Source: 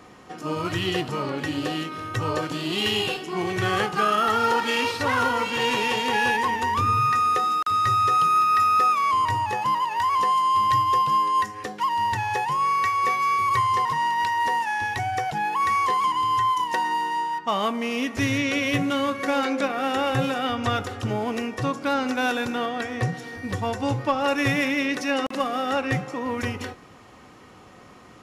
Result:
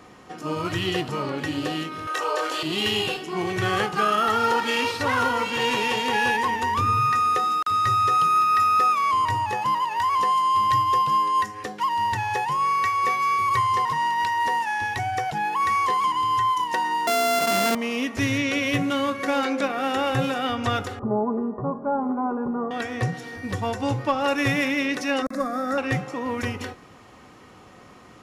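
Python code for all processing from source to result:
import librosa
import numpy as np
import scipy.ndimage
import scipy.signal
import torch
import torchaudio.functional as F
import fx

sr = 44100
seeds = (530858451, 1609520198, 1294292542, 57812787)

y = fx.chain(x, sr, fx.highpass(hz=440.0, slope=24),
    fx.doubler(ms=25.0, db=-3.5),
    fx.env_flatten(amount_pct=50), at=(2.07, 2.63))
y = fx.chain(y, sr, fx.sample_sort(block=64),
    fx.highpass(hz=170.0, slope=12),
    fx.env_flatten(amount_pct=100), at=(17.07, 17.75))
y = fx.chain(y, sr, fx.cheby1_lowpass(hz=1100.0, order=4),
    fx.comb(ms=4.9, depth=0.74), at=(20.99, 22.71))
y = fx.chain(y, sr, fx.low_shelf(hz=210.0, db=6.0),
    fx.fixed_phaser(hz=590.0, stages=8), at=(25.22, 25.78))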